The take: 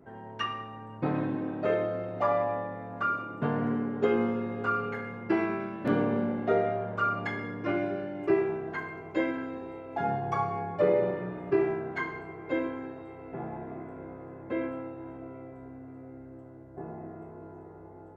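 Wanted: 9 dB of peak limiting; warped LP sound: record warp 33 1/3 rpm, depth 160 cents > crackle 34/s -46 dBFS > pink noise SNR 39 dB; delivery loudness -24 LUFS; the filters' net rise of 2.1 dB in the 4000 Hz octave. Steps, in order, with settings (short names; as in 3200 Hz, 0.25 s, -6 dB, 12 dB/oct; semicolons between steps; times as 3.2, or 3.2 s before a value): bell 4000 Hz +3.5 dB; limiter -21.5 dBFS; record warp 33 1/3 rpm, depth 160 cents; crackle 34/s -46 dBFS; pink noise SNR 39 dB; gain +9 dB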